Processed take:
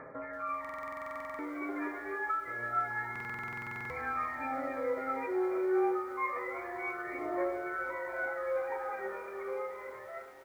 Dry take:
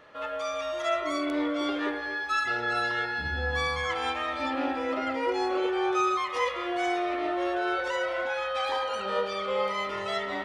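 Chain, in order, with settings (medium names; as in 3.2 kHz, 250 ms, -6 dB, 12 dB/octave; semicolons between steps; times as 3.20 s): fade out at the end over 3.22 s; brick-wall FIR low-pass 2.4 kHz; feedback delay 67 ms, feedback 54%, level -18 dB; on a send at -11 dB: reverberation, pre-delay 3 ms; on the sum: compression 5:1, threshold -37 dBFS, peak gain reduction 14.5 dB; high-pass 63 Hz 6 dB/octave; comb 7.5 ms, depth 54%; phaser 0.27 Hz, delay 3 ms, feedback 63%; buffer glitch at 0.60/3.11 s, samples 2048, times 16; bit-crushed delay 333 ms, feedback 80%, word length 9-bit, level -15 dB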